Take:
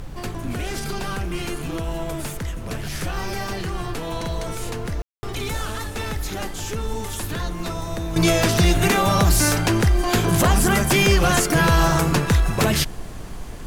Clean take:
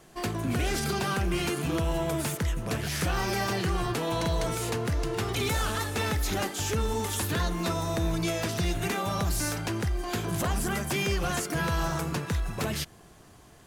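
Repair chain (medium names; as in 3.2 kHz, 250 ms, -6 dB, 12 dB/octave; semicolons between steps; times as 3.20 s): room tone fill 5.02–5.23 s; noise reduction 6 dB, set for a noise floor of -30 dBFS; gain correction -11.5 dB, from 8.16 s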